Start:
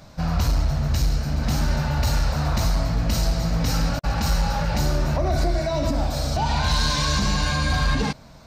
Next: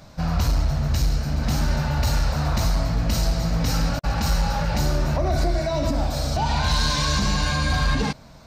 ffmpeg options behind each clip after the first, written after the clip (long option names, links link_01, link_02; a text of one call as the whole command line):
ffmpeg -i in.wav -af anull out.wav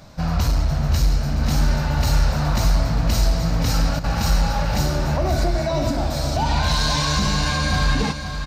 ffmpeg -i in.wav -af "aecho=1:1:522|1044|1566|2088:0.355|0.142|0.0568|0.0227,volume=1.5dB" out.wav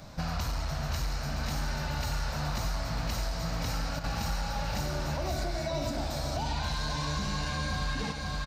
ffmpeg -i in.wav -filter_complex "[0:a]acrossover=split=680|2400[link_01][link_02][link_03];[link_01]acompressor=threshold=-30dB:ratio=4[link_04];[link_02]acompressor=threshold=-38dB:ratio=4[link_05];[link_03]acompressor=threshold=-39dB:ratio=4[link_06];[link_04][link_05][link_06]amix=inputs=3:normalize=0,asplit=2[link_07][link_08];[link_08]adelay=90,highpass=300,lowpass=3400,asoftclip=type=hard:threshold=-27.5dB,volume=-7dB[link_09];[link_07][link_09]amix=inputs=2:normalize=0,volume=-2.5dB" out.wav